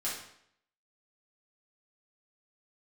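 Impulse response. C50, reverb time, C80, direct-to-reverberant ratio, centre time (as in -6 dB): 3.0 dB, 0.70 s, 7.0 dB, -8.5 dB, 46 ms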